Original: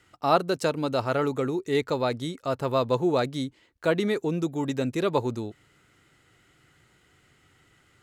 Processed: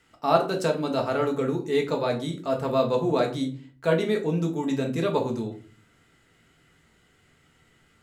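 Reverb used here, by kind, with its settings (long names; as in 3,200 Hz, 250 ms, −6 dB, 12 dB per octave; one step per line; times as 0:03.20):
rectangular room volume 270 cubic metres, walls furnished, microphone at 1.6 metres
level −2.5 dB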